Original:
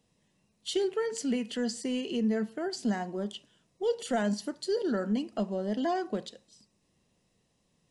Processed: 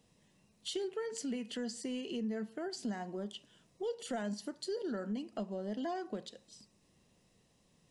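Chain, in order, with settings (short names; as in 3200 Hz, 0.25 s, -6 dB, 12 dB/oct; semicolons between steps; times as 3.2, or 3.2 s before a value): compressor 2:1, threshold -47 dBFS, peak gain reduction 12.5 dB; gain +2.5 dB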